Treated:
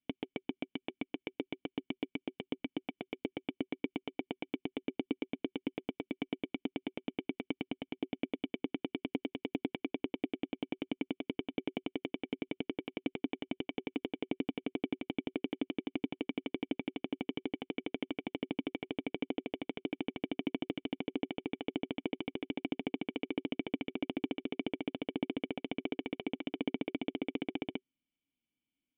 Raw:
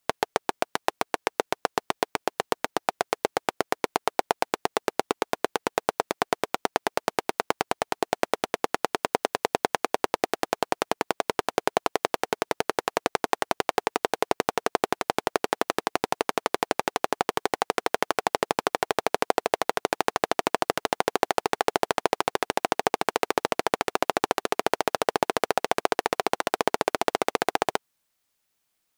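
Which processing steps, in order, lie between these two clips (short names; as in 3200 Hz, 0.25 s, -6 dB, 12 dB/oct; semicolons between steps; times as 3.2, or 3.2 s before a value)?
vocal tract filter i; notch 380 Hz, Q 12; gain +4 dB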